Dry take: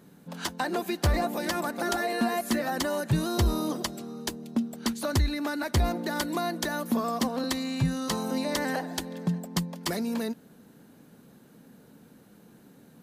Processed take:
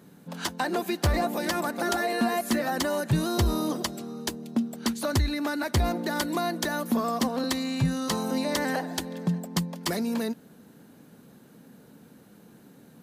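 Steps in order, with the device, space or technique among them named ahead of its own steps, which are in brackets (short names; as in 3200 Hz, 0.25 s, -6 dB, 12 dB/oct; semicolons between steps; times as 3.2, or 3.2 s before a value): HPF 52 Hz; parallel distortion (in parallel at -13 dB: hard clip -24.5 dBFS, distortion -11 dB)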